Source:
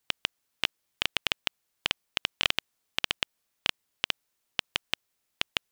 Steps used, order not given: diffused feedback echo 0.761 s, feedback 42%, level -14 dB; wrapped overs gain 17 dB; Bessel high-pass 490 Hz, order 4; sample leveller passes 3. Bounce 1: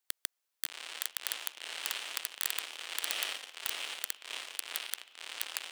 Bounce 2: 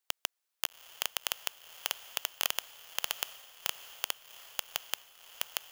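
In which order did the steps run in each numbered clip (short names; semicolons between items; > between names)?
diffused feedback echo > sample leveller > wrapped overs > Bessel high-pass; wrapped overs > Bessel high-pass > sample leveller > diffused feedback echo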